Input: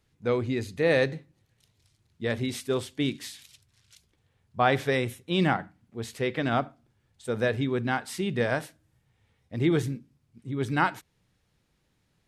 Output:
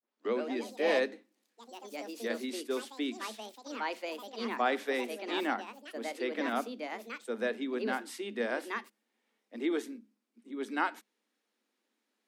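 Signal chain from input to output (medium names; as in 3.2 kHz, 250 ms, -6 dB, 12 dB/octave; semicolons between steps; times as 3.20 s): tape start-up on the opening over 0.32 s; ever faster or slower copies 157 ms, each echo +4 st, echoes 3, each echo -6 dB; Chebyshev high-pass 210 Hz, order 10; trim -6 dB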